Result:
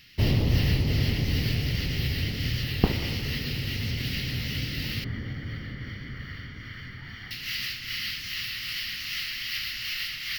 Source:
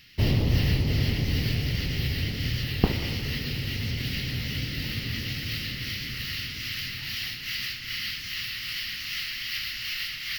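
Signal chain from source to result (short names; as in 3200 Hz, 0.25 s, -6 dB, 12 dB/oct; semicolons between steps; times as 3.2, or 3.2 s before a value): 5.04–7.31 polynomial smoothing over 41 samples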